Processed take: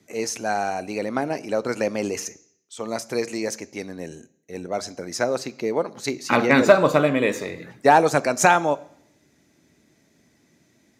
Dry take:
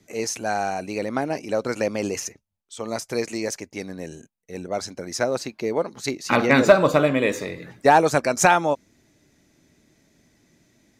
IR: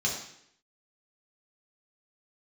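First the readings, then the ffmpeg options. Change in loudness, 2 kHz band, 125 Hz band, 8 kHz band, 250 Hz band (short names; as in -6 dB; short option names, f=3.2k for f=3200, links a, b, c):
0.0 dB, +0.5 dB, -1.0 dB, -0.5 dB, 0.0 dB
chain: -filter_complex "[0:a]highpass=78,asplit=2[a][b];[1:a]atrim=start_sample=2205[c];[b][c]afir=irnorm=-1:irlink=0,volume=-23.5dB[d];[a][d]amix=inputs=2:normalize=0"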